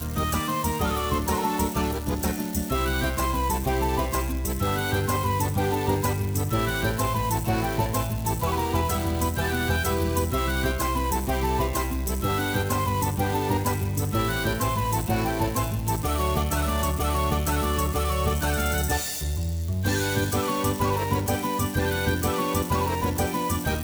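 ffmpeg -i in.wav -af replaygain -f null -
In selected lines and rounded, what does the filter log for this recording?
track_gain = +9.6 dB
track_peak = 0.213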